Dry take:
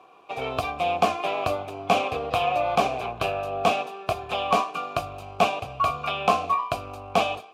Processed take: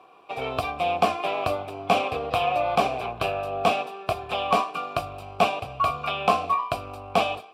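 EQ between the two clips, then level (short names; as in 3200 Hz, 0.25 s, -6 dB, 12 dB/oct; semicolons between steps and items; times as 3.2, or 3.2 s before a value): notch 6500 Hz, Q 6.3; 0.0 dB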